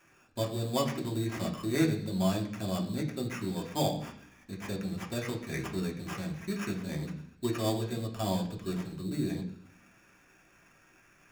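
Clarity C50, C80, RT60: 9.5 dB, 12.5 dB, 0.65 s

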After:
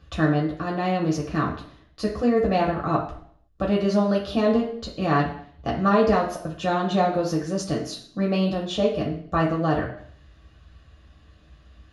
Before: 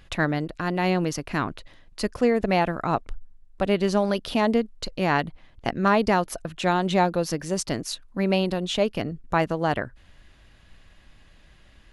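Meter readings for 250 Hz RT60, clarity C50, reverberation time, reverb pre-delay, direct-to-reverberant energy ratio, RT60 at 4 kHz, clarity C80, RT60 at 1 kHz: 0.65 s, 7.0 dB, 0.60 s, 3 ms, −3.0 dB, 0.65 s, 10.5 dB, 0.55 s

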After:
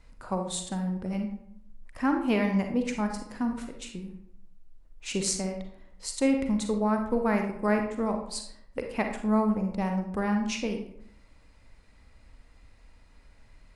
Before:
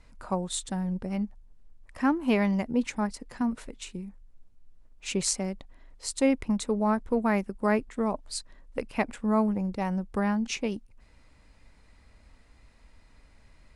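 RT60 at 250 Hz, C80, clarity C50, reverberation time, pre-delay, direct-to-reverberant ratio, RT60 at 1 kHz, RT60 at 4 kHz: 0.80 s, 9.5 dB, 5.5 dB, 0.70 s, 35 ms, 4.0 dB, 0.65 s, 0.45 s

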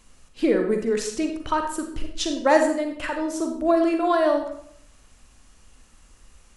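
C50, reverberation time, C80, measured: 5.5 dB, 0.65 s, 9.5 dB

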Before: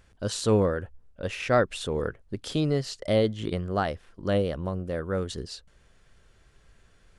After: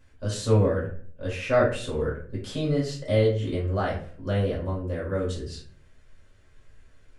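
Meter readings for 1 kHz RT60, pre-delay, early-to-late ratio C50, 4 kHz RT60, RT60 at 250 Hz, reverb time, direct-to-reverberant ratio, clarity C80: 0.45 s, 3 ms, 6.0 dB, 0.30 s, 0.65 s, 0.50 s, −6.0 dB, 11.0 dB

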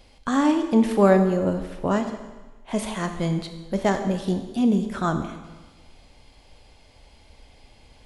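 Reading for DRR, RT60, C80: 6.5 dB, 1.2 s, 10.0 dB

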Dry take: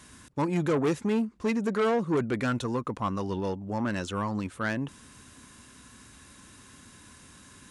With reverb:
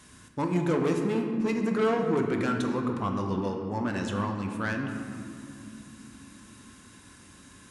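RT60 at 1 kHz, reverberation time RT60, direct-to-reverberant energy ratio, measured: 2.4 s, 2.8 s, 2.5 dB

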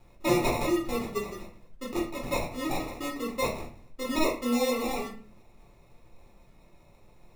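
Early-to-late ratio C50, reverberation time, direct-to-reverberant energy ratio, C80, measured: 8.0 dB, 0.45 s, −4.5 dB, 12.5 dB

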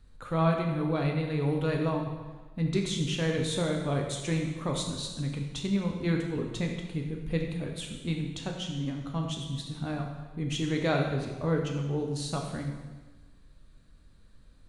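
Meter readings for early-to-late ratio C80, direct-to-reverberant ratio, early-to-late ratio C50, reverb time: 6.0 dB, 1.0 dB, 4.0 dB, 1.3 s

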